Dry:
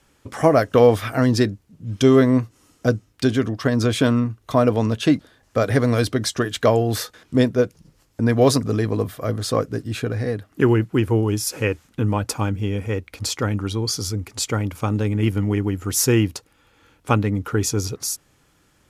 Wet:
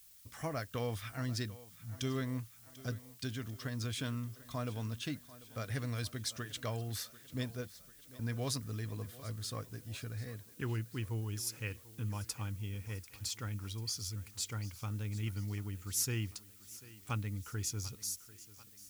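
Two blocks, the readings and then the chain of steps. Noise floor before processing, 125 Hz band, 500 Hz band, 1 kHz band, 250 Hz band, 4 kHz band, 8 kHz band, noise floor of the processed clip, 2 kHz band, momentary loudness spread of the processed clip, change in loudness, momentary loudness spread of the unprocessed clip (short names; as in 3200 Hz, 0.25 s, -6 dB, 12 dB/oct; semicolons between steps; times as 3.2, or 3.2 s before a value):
-60 dBFS, -16.0 dB, -26.0 dB, -21.5 dB, -23.0 dB, -13.5 dB, -13.0 dB, -58 dBFS, -17.0 dB, 8 LU, -19.0 dB, 10 LU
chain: low shelf 140 Hz +10 dB; on a send: thinning echo 0.742 s, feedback 57%, high-pass 150 Hz, level -17.5 dB; on the sum: added noise blue -47 dBFS; passive tone stack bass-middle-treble 5-5-5; gain -7 dB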